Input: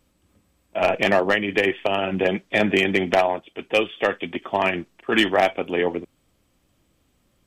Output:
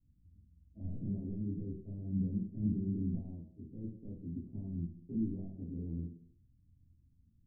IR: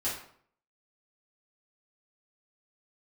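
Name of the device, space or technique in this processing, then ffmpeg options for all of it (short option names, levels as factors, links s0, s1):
club heard from the street: -filter_complex "[0:a]alimiter=limit=0.2:level=0:latency=1:release=10,lowpass=f=180:w=0.5412,lowpass=f=180:w=1.3066[s0];[1:a]atrim=start_sample=2205[s1];[s0][s1]afir=irnorm=-1:irlink=0,volume=0.631"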